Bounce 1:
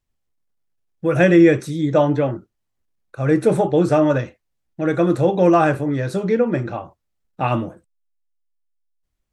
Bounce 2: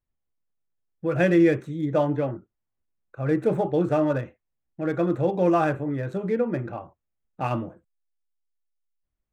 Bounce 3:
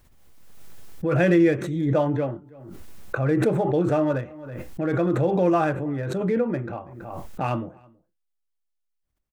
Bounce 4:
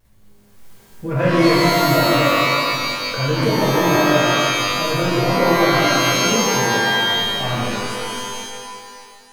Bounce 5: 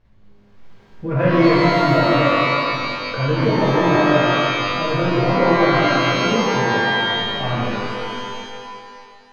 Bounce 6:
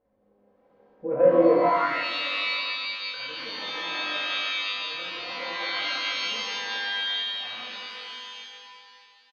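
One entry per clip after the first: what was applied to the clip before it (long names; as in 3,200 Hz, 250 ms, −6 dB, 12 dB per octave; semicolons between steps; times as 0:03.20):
adaptive Wiener filter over 9 samples; level −6.5 dB
slap from a distant wall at 56 metres, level −27 dB; background raised ahead of every attack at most 33 dB per second
pitch vibrato 0.47 Hz 15 cents; reverb with rising layers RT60 2.2 s, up +12 semitones, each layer −2 dB, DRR −7 dB; level −4.5 dB
high-frequency loss of the air 220 metres; level +1 dB
comb filter 3.9 ms, depth 53%; band-pass filter sweep 530 Hz → 3,600 Hz, 0:01.57–0:02.14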